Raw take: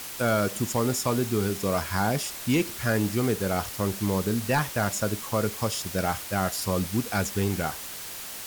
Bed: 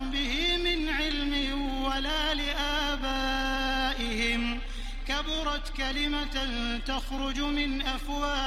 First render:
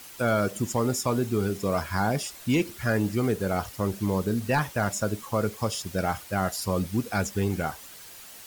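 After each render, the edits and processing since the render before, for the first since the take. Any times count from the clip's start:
broadband denoise 9 dB, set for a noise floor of −38 dBFS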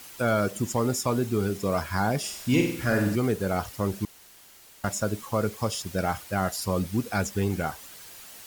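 0:02.19–0:03.16: flutter between parallel walls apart 8.3 metres, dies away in 0.64 s
0:04.05–0:04.84: fill with room tone
0:05.63–0:06.11: log-companded quantiser 8 bits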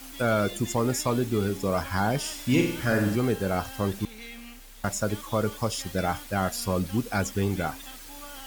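mix in bed −15 dB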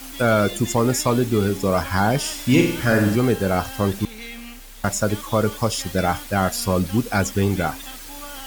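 level +6.5 dB

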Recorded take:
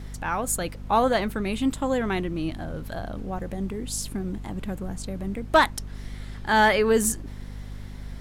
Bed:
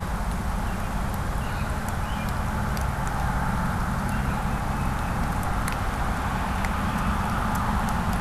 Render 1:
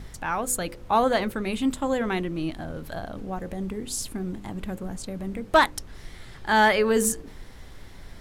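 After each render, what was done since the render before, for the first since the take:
hum removal 50 Hz, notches 11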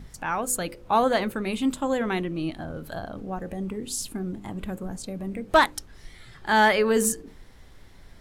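noise reduction from a noise print 6 dB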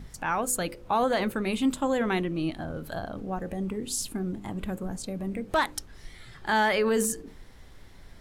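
brickwall limiter −16.5 dBFS, peak gain reduction 8 dB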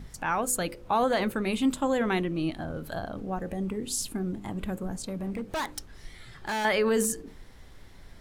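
0:04.92–0:06.65: hard clipping −28 dBFS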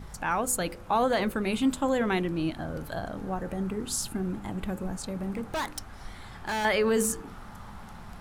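mix in bed −20.5 dB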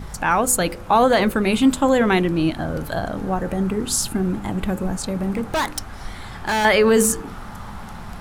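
level +9.5 dB

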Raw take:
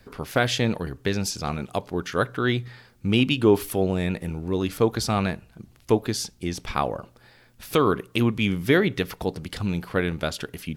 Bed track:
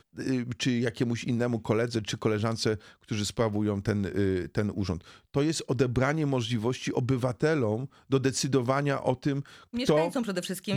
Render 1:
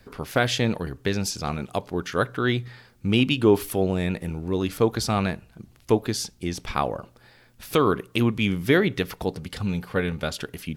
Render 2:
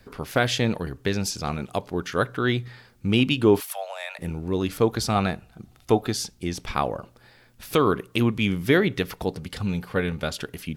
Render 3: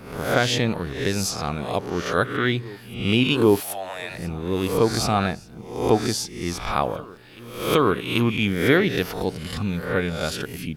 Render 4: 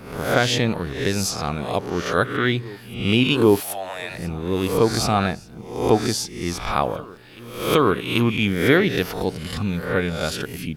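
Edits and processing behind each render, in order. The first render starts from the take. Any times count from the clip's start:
0:09.37–0:10.32: notch comb filter 330 Hz
0:03.60–0:04.19: Butterworth high-pass 580 Hz 72 dB per octave; 0:05.15–0:06.13: hollow resonant body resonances 750/1,300/3,600 Hz, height 10 dB
peak hold with a rise ahead of every peak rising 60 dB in 0.62 s; backwards echo 786 ms −22.5 dB
level +1.5 dB

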